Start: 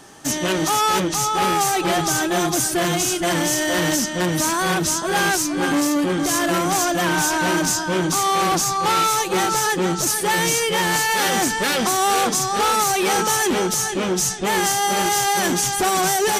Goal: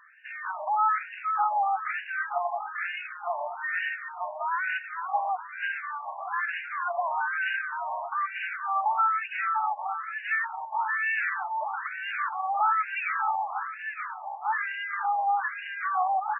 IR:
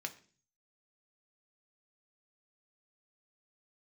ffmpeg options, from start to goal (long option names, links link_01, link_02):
-filter_complex "[0:a]asplit=2[link_01][link_02];[link_02]adelay=1166,volume=-11dB,highshelf=frequency=4000:gain=-26.2[link_03];[link_01][link_03]amix=inputs=2:normalize=0,afftfilt=real='re*between(b*sr/1024,800*pow(2100/800,0.5+0.5*sin(2*PI*1.1*pts/sr))/1.41,800*pow(2100/800,0.5+0.5*sin(2*PI*1.1*pts/sr))*1.41)':imag='im*between(b*sr/1024,800*pow(2100/800,0.5+0.5*sin(2*PI*1.1*pts/sr))/1.41,800*pow(2100/800,0.5+0.5*sin(2*PI*1.1*pts/sr))*1.41)':win_size=1024:overlap=0.75,volume=-3dB"